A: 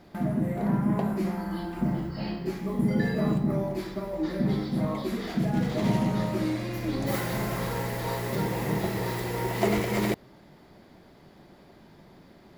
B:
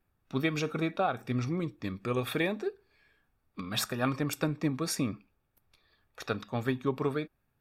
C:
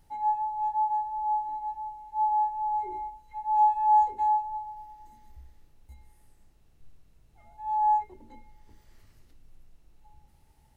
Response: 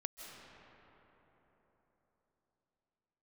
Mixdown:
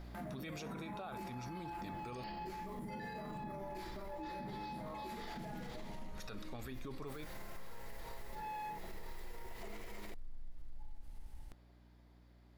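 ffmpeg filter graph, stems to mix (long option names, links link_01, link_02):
-filter_complex "[0:a]aeval=exprs='val(0)+0.0112*(sin(2*PI*60*n/s)+sin(2*PI*2*60*n/s)/2+sin(2*PI*3*60*n/s)/3+sin(2*PI*4*60*n/s)/4+sin(2*PI*5*60*n/s)/5)':channel_layout=same,volume=-1.5dB,afade=type=out:start_time=5.62:duration=0.24:silence=0.223872[link_01];[1:a]highshelf=frequency=3900:gain=12,volume=-9dB,asplit=3[link_02][link_03][link_04];[link_02]atrim=end=2.24,asetpts=PTS-STARTPTS,afade=type=out:start_time=2.236:duration=0.004:curve=hsin[link_05];[link_03]atrim=start=2.24:end=5.21,asetpts=PTS-STARTPTS,volume=0[link_06];[link_04]atrim=start=5.21,asetpts=PTS-STARTPTS,afade=type=in:duration=0.004:curve=hsin[link_07];[link_05][link_06][link_07]concat=n=3:v=0:a=1[link_08];[2:a]asubboost=boost=9.5:cutoff=75,acompressor=threshold=-32dB:ratio=6,asoftclip=type=tanh:threshold=-34.5dB,adelay=750,volume=2dB[link_09];[link_01][link_09]amix=inputs=2:normalize=0,equalizer=frequency=120:width=0.31:gain=-9.5,acompressor=threshold=-40dB:ratio=6,volume=0dB[link_10];[link_08][link_10]amix=inputs=2:normalize=0,alimiter=level_in=13.5dB:limit=-24dB:level=0:latency=1:release=17,volume=-13.5dB"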